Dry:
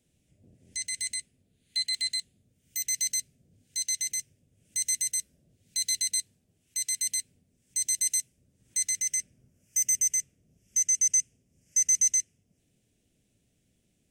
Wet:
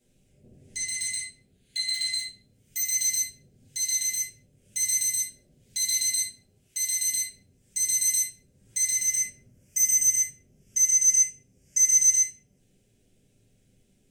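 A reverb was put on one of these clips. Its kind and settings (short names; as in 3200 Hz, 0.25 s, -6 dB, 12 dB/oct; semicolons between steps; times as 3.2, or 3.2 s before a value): shoebox room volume 38 m³, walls mixed, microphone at 1.2 m; gain -2 dB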